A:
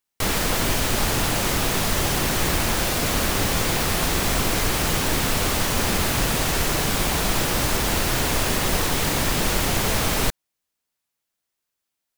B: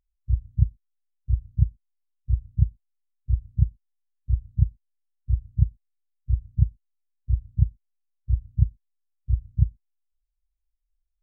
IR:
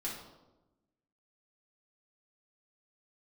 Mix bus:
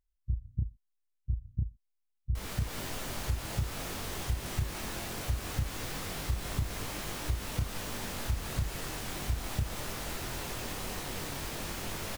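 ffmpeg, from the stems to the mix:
-filter_complex "[0:a]flanger=delay=20:depth=3.2:speed=0.2,adelay=2150,volume=-14.5dB,asplit=2[a][b];[b]volume=-3.5dB[c];[1:a]alimiter=limit=-15dB:level=0:latency=1:release=40,volume=-2.5dB[d];[c]aecho=0:1:262:1[e];[a][d][e]amix=inputs=3:normalize=0,acompressor=threshold=-27dB:ratio=6"

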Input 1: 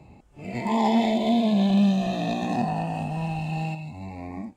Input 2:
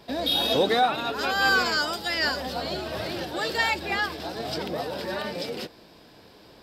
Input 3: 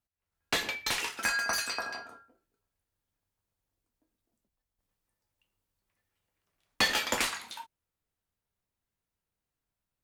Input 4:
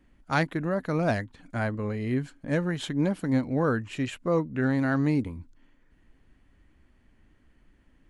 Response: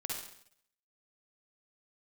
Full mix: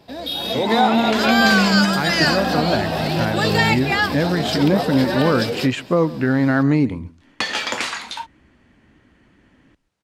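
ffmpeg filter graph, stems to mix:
-filter_complex "[0:a]volume=-4dB[a];[1:a]alimiter=limit=-14.5dB:level=0:latency=1:release=296,volume=-3dB[b];[2:a]acompressor=threshold=-30dB:ratio=6,adelay=600,volume=2dB[c];[3:a]adelay=1650,volume=0dB,asplit=2[d][e];[e]volume=-23.5dB[f];[a][c][d]amix=inputs=3:normalize=0,highpass=100,lowpass=6.5k,alimiter=limit=-19.5dB:level=0:latency=1:release=336,volume=0dB[g];[f]aecho=0:1:138:1[h];[b][g][h]amix=inputs=3:normalize=0,dynaudnorm=f=420:g=3:m=11.5dB"

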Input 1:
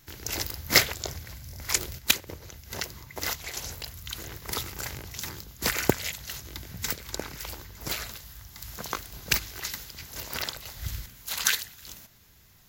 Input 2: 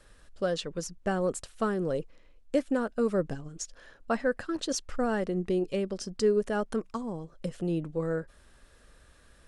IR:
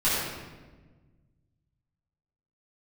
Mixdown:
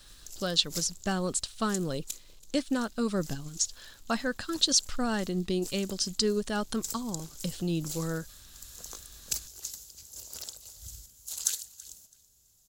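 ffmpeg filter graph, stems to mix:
-filter_complex "[0:a]equalizer=f=125:t=o:w=1:g=-6,equalizer=f=250:t=o:w=1:g=-4,equalizer=f=500:t=o:w=1:g=9,equalizer=f=1k:t=o:w=1:g=-6,equalizer=f=2k:t=o:w=1:g=-10,equalizer=f=4k:t=o:w=1:g=-12,equalizer=f=8k:t=o:w=1:g=10,volume=-11.5dB,afade=t=in:st=6.49:d=0.44:silence=0.316228,asplit=2[a][b];[b]volume=-20.5dB[c];[1:a]acrusher=bits=10:mix=0:aa=0.000001,volume=2dB[d];[c]aecho=0:1:330|660|990|1320:1|0.24|0.0576|0.0138[e];[a][d][e]amix=inputs=3:normalize=0,equalizer=f=500:t=o:w=1:g=-9,equalizer=f=2k:t=o:w=1:g=-4,equalizer=f=4k:t=o:w=1:g=12,equalizer=f=8k:t=o:w=1:g=5"

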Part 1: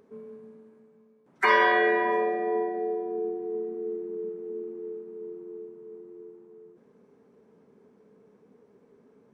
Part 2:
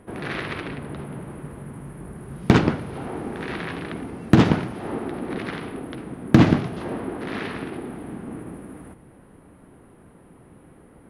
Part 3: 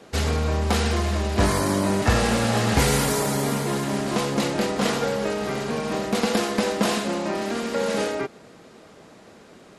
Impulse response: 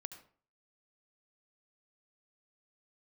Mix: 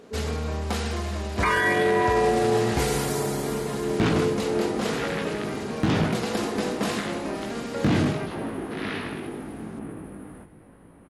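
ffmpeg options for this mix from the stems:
-filter_complex "[0:a]aphaser=in_gain=1:out_gain=1:delay=1.1:decay=0.52:speed=0.46:type=sinusoidal,volume=2.5dB[a];[1:a]flanger=delay=18:depth=2.3:speed=0.85,adynamicequalizer=threshold=0.00631:dfrequency=2300:dqfactor=0.7:tfrequency=2300:tqfactor=0.7:attack=5:release=100:ratio=0.375:range=2:mode=boostabove:tftype=highshelf,adelay=1500,volume=-1.5dB,asplit=2[b][c];[c]volume=-3.5dB[d];[2:a]volume=-6dB[e];[3:a]atrim=start_sample=2205[f];[d][f]afir=irnorm=-1:irlink=0[g];[a][b][e][g]amix=inputs=4:normalize=0,alimiter=limit=-13.5dB:level=0:latency=1:release=17"

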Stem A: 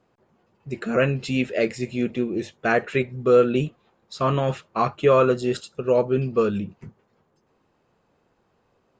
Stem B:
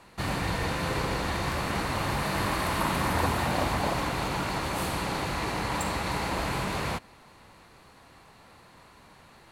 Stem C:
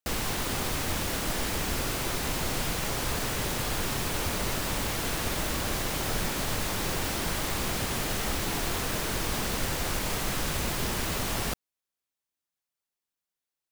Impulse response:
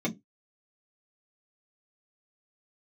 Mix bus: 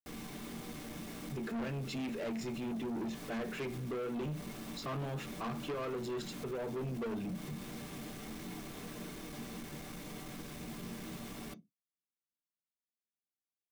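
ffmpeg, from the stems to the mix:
-filter_complex "[0:a]highpass=f=91:w=0.5412,highpass=f=91:w=1.3066,acompressor=threshold=-20dB:ratio=6,adelay=650,volume=-4dB,asplit=2[a][b];[b]volume=-14.5dB[c];[2:a]volume=28dB,asoftclip=hard,volume=-28dB,volume=-19dB,asplit=2[d][e];[e]volume=-7.5dB[f];[3:a]atrim=start_sample=2205[g];[c][f]amix=inputs=2:normalize=0[h];[h][g]afir=irnorm=-1:irlink=0[i];[a][d][i]amix=inputs=3:normalize=0,asoftclip=type=tanh:threshold=-28.5dB,alimiter=level_in=11dB:limit=-24dB:level=0:latency=1:release=43,volume=-11dB"

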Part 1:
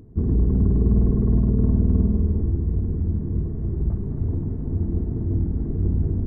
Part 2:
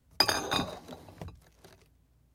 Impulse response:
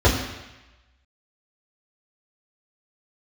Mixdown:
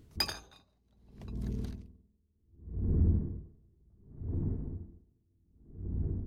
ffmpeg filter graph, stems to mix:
-filter_complex "[0:a]acompressor=threshold=-19dB:ratio=2,volume=-1dB,afade=t=in:st=2.48:d=0.34:silence=0.251189,afade=t=out:st=4.3:d=0.28:silence=0.375837[a];[1:a]equalizer=f=3.7k:t=o:w=2.1:g=5.5,volume=1dB[b];[a][b]amix=inputs=2:normalize=0,asoftclip=type=tanh:threshold=-14.5dB,aeval=exprs='val(0)*pow(10,-40*(0.5-0.5*cos(2*PI*0.66*n/s))/20)':c=same"

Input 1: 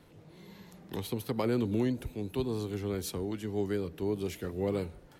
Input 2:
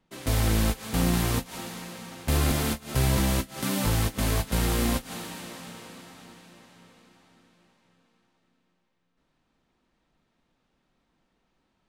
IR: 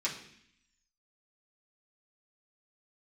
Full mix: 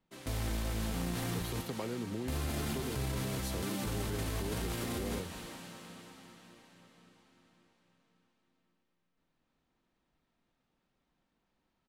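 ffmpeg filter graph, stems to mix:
-filter_complex "[0:a]acompressor=threshold=-36dB:ratio=6,adelay=400,volume=0.5dB[a];[1:a]highshelf=f=12k:g=-4,volume=-8.5dB,asplit=2[b][c];[c]volume=-3.5dB,aecho=0:1:215:1[d];[a][b][d]amix=inputs=3:normalize=0,alimiter=level_in=3dB:limit=-24dB:level=0:latency=1:release=36,volume=-3dB"

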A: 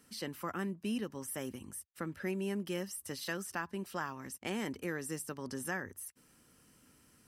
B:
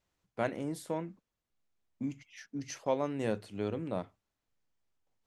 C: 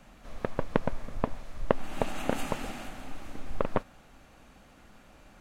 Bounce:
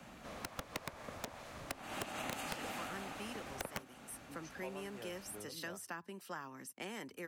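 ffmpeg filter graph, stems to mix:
-filter_complex "[0:a]highpass=140,adelay=2350,volume=-4.5dB[a];[1:a]adelay=1750,volume=-15dB[b];[2:a]volume=19.5dB,asoftclip=hard,volume=-19.5dB,volume=2dB[c];[a][b][c]amix=inputs=3:normalize=0,highpass=88,acrossover=split=120|440[d][e][f];[d]acompressor=threshold=-59dB:ratio=4[g];[e]acompressor=threshold=-52dB:ratio=4[h];[f]acompressor=threshold=-40dB:ratio=4[i];[g][h][i]amix=inputs=3:normalize=0,aeval=exprs='(mod(26.6*val(0)+1,2)-1)/26.6':c=same"

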